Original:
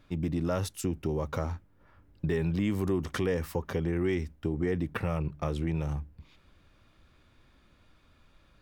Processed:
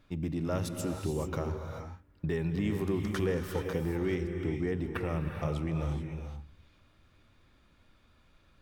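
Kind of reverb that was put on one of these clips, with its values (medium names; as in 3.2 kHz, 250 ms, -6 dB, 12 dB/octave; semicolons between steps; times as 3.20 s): gated-style reverb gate 460 ms rising, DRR 4.5 dB; trim -3 dB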